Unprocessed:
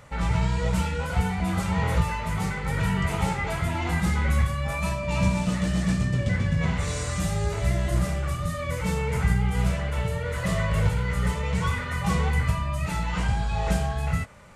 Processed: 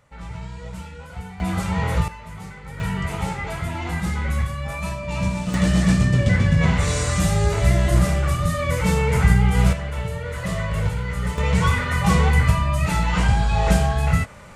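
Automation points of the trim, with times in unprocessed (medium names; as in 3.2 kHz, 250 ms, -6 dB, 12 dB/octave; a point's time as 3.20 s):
-10 dB
from 1.40 s +2 dB
from 2.08 s -9 dB
from 2.80 s -0.5 dB
from 5.54 s +7 dB
from 9.73 s 0 dB
from 11.38 s +7 dB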